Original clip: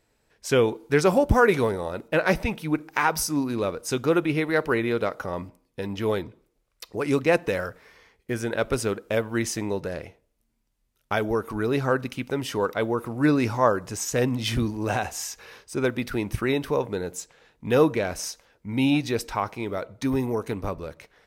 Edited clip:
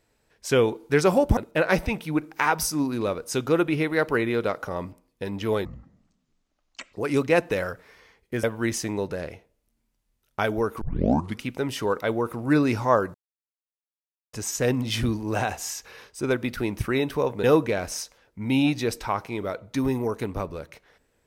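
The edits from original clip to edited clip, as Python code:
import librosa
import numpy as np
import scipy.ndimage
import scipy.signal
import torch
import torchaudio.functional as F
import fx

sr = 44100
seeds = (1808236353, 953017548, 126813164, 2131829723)

y = fx.edit(x, sr, fx.cut(start_s=1.37, length_s=0.57),
    fx.speed_span(start_s=6.22, length_s=0.68, speed=0.53),
    fx.cut(start_s=8.4, length_s=0.76),
    fx.tape_start(start_s=11.54, length_s=0.61),
    fx.insert_silence(at_s=13.87, length_s=1.19),
    fx.cut(start_s=16.97, length_s=0.74), tone=tone)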